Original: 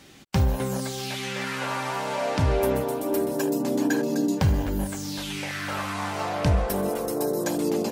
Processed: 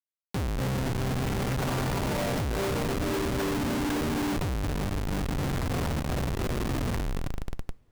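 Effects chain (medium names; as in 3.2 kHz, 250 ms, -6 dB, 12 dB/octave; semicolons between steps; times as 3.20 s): tape stop on the ending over 2.57 s; Schmitt trigger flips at -25.5 dBFS; two-slope reverb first 0.2 s, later 3.8 s, from -22 dB, DRR 19.5 dB; trim -3 dB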